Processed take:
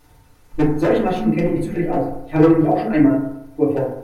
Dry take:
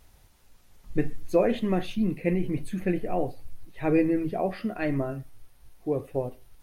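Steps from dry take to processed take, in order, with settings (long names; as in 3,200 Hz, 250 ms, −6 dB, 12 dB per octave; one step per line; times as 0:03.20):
mains-hum notches 60/120/180/240/300/360/420/480 Hz
time stretch by overlap-add 0.61×, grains 102 ms
wave folding −18.5 dBFS
feedback delay network reverb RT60 0.8 s, low-frequency decay 1×, high-frequency decay 0.25×, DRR −7 dB
level +2.5 dB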